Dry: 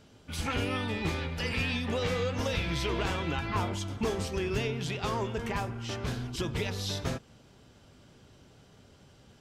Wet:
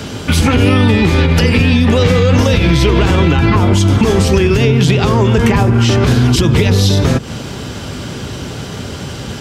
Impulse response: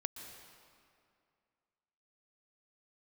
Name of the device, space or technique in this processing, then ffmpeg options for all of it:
mastering chain: -filter_complex "[0:a]highpass=50,equalizer=f=660:t=o:w=0.77:g=-3,acrossover=split=210|590[a][b][c];[a]acompressor=threshold=-35dB:ratio=4[d];[b]acompressor=threshold=-41dB:ratio=4[e];[c]acompressor=threshold=-46dB:ratio=4[f];[d][e][f]amix=inputs=3:normalize=0,acompressor=threshold=-40dB:ratio=2.5,alimiter=level_in=34dB:limit=-1dB:release=50:level=0:latency=1,volume=-1dB"

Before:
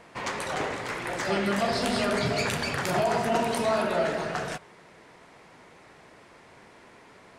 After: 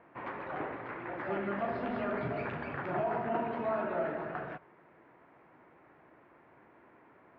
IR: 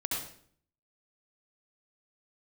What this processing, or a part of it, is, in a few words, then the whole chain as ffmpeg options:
bass cabinet: -af "highpass=63,equalizer=f=93:t=q:w=4:g=-5,equalizer=f=190:t=q:w=4:g=-4,equalizer=f=320:t=q:w=4:g=5,equalizer=f=450:t=q:w=4:g=-3,equalizer=f=2k:t=q:w=4:g=-3,lowpass=f=2.1k:w=0.5412,lowpass=f=2.1k:w=1.3066,volume=-7dB"

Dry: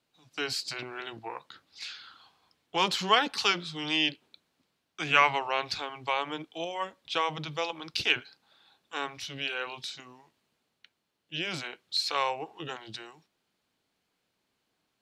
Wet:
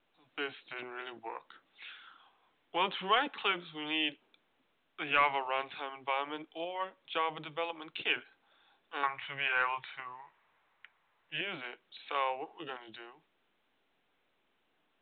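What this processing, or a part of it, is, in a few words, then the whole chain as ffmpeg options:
telephone: -filter_complex "[0:a]asettb=1/sr,asplit=3[a][b][c];[a]atrim=end=9.034[d];[b]atrim=start=9.03:end=11.41,asetpts=PTS-STARTPTS,afade=t=in:d=0.004:c=qsin,afade=t=out:st=2.376:d=0.004:c=qsin,equalizer=f=125:t=o:w=1:g=11,equalizer=f=250:t=o:w=1:g=-11,equalizer=f=1k:t=o:w=1:g=12,equalizer=f=2k:t=o:w=1:g=10,equalizer=f=4k:t=o:w=1:g=-6[e];[c]atrim=start=11.406[f];[d][e]acrossfade=d=0.004:c1=hsin:c2=qsin[g];[g][f]acrossfade=d=0.004:c1=qsin:c2=hsin,highpass=260,lowpass=3.2k,asoftclip=type=tanh:threshold=-13.5dB,volume=-3dB" -ar 8000 -c:a pcm_mulaw

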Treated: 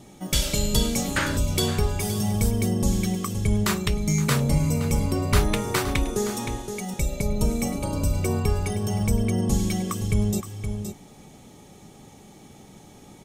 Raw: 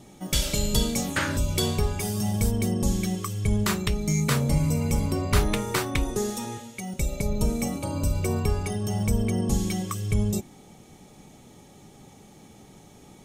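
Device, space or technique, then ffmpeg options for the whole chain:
ducked delay: -filter_complex "[0:a]asplit=3[a][b][c];[b]adelay=519,volume=-7.5dB[d];[c]apad=whole_len=607131[e];[d][e]sidechaincompress=threshold=-31dB:ratio=8:attack=16:release=130[f];[a][f]amix=inputs=2:normalize=0,volume=1.5dB"

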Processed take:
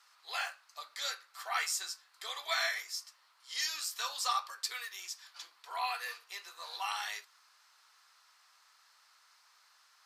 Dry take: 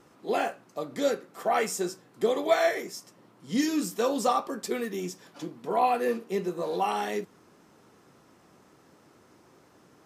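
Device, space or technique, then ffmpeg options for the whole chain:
headphones lying on a table: -af "highpass=f=1.1k:w=0.5412,highpass=f=1.1k:w=1.3066,equalizer=f=4.4k:t=o:w=0.53:g=9.5,volume=-2dB"

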